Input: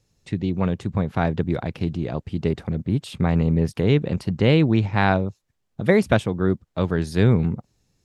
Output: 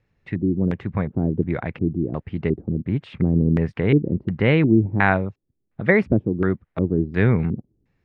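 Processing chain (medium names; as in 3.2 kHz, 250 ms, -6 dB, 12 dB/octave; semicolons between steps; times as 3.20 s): LFO low-pass square 1.4 Hz 330–2000 Hz; trim -1 dB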